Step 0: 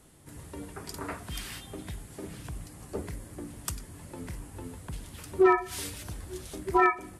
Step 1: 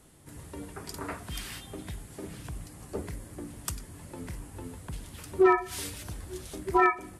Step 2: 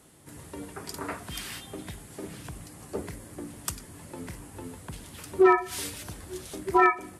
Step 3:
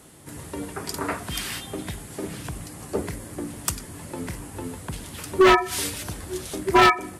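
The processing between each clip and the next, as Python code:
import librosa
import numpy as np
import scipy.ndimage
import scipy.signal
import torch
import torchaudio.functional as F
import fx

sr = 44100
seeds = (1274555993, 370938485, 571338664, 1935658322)

y1 = x
y2 = fx.highpass(y1, sr, hz=130.0, slope=6)
y2 = F.gain(torch.from_numpy(y2), 2.5).numpy()
y3 = 10.0 ** (-15.5 / 20.0) * (np.abs((y2 / 10.0 ** (-15.5 / 20.0) + 3.0) % 4.0 - 2.0) - 1.0)
y3 = F.gain(torch.from_numpy(y3), 7.0).numpy()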